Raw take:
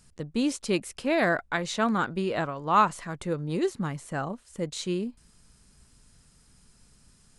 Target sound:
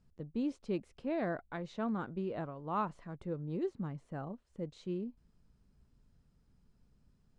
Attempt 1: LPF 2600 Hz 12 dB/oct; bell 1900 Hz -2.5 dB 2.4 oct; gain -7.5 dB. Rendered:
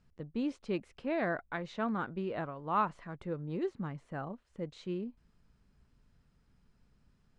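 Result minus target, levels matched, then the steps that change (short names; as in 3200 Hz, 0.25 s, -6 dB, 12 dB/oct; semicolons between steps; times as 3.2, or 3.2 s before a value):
2000 Hz band +5.0 dB
change: bell 1900 Hz -10 dB 2.4 oct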